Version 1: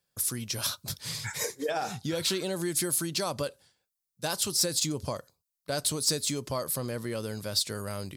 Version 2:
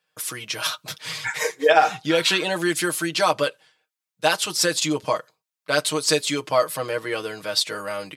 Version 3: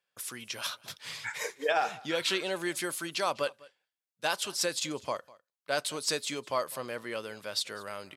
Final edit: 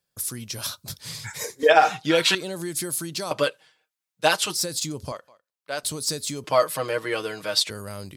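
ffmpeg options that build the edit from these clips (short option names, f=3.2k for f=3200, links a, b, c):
-filter_complex "[1:a]asplit=3[a][b][c];[0:a]asplit=5[d][e][f][g][h];[d]atrim=end=1.632[i];[a]atrim=start=1.628:end=2.352[j];[e]atrim=start=2.348:end=3.312[k];[b]atrim=start=3.308:end=4.552[l];[f]atrim=start=4.548:end=5.122[m];[2:a]atrim=start=5.118:end=5.832[n];[g]atrim=start=5.828:end=6.442[o];[c]atrim=start=6.438:end=7.702[p];[h]atrim=start=7.698[q];[i][j]acrossfade=d=0.004:c1=hsin:c2=hsin[r];[r][k]acrossfade=d=0.004:c1=hsin:c2=hsin[s];[s][l]acrossfade=d=0.004:c1=hsin:c2=hsin[t];[t][m]acrossfade=d=0.004:c1=hsin:c2=hsin[u];[u][n]acrossfade=d=0.004:c1=hsin:c2=hsin[v];[v][o]acrossfade=d=0.004:c1=hsin:c2=hsin[w];[w][p]acrossfade=d=0.004:c1=hsin:c2=hsin[x];[x][q]acrossfade=d=0.004:c1=hsin:c2=hsin"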